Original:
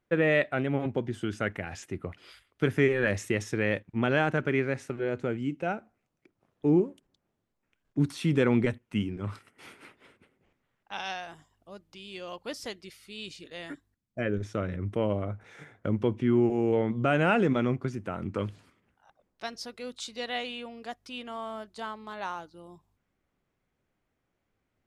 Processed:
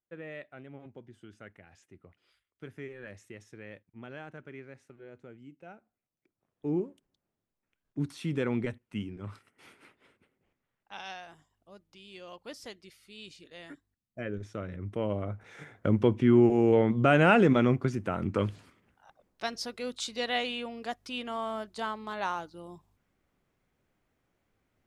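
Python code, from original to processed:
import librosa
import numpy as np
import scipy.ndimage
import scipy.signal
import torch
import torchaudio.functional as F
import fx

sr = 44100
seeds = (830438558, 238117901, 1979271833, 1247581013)

y = fx.gain(x, sr, db=fx.line((5.6, -19.0), (6.84, -6.5), (14.67, -6.5), (15.86, 3.0)))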